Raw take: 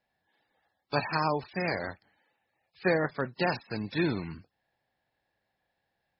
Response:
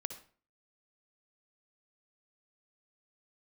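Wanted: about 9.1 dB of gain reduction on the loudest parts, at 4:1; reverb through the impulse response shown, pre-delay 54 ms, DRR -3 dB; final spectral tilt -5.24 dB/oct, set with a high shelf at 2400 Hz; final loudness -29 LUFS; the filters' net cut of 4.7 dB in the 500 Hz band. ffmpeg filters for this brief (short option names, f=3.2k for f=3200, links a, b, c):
-filter_complex "[0:a]equalizer=f=500:t=o:g=-5.5,highshelf=f=2.4k:g=-9,acompressor=threshold=-36dB:ratio=4,asplit=2[a][b];[1:a]atrim=start_sample=2205,adelay=54[c];[b][c]afir=irnorm=-1:irlink=0,volume=4dB[d];[a][d]amix=inputs=2:normalize=0,volume=8dB"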